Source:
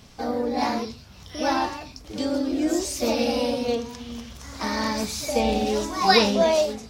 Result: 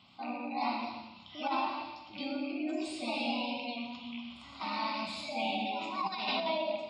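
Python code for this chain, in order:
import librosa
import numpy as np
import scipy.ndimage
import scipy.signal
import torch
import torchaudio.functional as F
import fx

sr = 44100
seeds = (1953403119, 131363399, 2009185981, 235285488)

y = fx.rattle_buzz(x, sr, strikes_db=-33.0, level_db=-26.0)
y = fx.bandpass_edges(y, sr, low_hz=220.0, high_hz=5300.0)
y = fx.high_shelf(y, sr, hz=2200.0, db=5.0)
y = fx.spec_gate(y, sr, threshold_db=-25, keep='strong')
y = fx.fixed_phaser(y, sr, hz=1700.0, stages=6)
y = fx.rev_gated(y, sr, seeds[0], gate_ms=380, shape='falling', drr_db=2.5)
y = fx.over_compress(y, sr, threshold_db=-23.0, ratio=-0.5)
y = fx.echo_feedback(y, sr, ms=122, feedback_pct=40, wet_db=-12.0)
y = F.gain(torch.from_numpy(y), -8.0).numpy()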